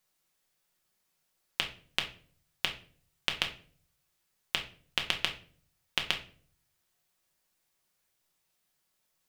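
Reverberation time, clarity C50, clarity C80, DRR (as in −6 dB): 0.45 s, 11.0 dB, 16.0 dB, 2.0 dB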